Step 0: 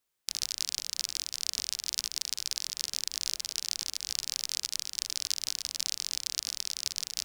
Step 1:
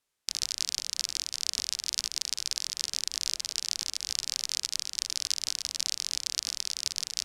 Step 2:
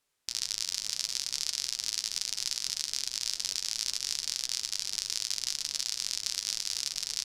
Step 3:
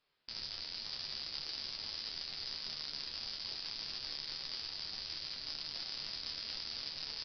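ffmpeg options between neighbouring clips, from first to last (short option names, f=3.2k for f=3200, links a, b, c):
-af "lowpass=11k,volume=2dB"
-af "flanger=delay=6.5:depth=4.1:regen=-59:speed=0.71:shape=triangular,aecho=1:1:488:0.266,alimiter=limit=-16.5dB:level=0:latency=1:release=133,volume=6.5dB"
-af "aresample=11025,asoftclip=type=tanh:threshold=-32.5dB,aresample=44100,aecho=1:1:13|27:0.531|0.473"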